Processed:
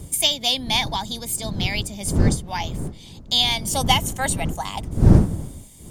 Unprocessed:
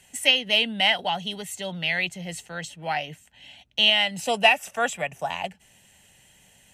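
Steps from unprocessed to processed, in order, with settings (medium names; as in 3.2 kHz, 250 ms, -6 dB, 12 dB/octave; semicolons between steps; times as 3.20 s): wind noise 140 Hz -23 dBFS; resonant high shelf 3.7 kHz +9.5 dB, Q 1.5; tape speed +14%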